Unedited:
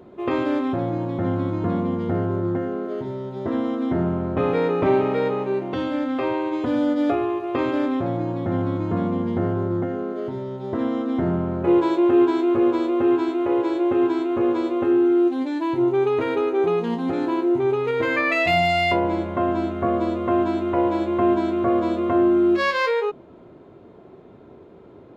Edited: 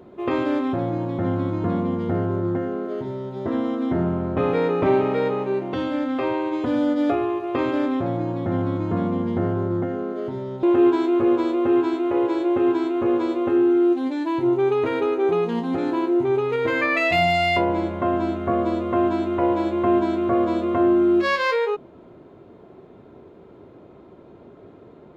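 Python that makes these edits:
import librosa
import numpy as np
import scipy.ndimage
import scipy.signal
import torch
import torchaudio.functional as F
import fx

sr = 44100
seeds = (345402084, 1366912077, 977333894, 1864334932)

y = fx.edit(x, sr, fx.cut(start_s=10.63, length_s=1.35), tone=tone)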